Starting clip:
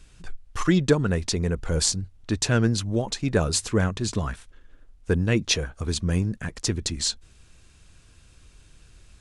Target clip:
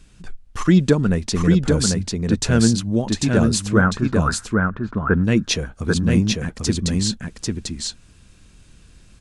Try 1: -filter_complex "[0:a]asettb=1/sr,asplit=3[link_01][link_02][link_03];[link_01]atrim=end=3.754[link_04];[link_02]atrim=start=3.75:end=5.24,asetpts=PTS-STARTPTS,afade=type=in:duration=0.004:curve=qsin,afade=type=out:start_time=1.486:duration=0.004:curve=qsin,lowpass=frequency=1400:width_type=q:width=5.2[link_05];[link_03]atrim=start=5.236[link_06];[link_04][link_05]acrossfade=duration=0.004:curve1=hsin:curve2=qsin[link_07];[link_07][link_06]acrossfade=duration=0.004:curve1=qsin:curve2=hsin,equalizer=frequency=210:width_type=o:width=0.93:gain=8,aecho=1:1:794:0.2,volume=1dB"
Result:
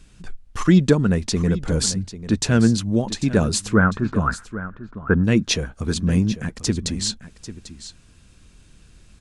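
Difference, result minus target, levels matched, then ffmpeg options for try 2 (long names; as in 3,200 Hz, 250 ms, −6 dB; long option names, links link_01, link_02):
echo-to-direct −11 dB
-filter_complex "[0:a]asettb=1/sr,asplit=3[link_01][link_02][link_03];[link_01]atrim=end=3.754[link_04];[link_02]atrim=start=3.75:end=5.24,asetpts=PTS-STARTPTS,afade=type=in:duration=0.004:curve=qsin,afade=type=out:start_time=1.486:duration=0.004:curve=qsin,lowpass=frequency=1400:width_type=q:width=5.2[link_05];[link_03]atrim=start=5.236[link_06];[link_04][link_05]acrossfade=duration=0.004:curve1=hsin:curve2=qsin[link_07];[link_07][link_06]acrossfade=duration=0.004:curve1=qsin:curve2=hsin,equalizer=frequency=210:width_type=o:width=0.93:gain=8,aecho=1:1:794:0.708,volume=1dB"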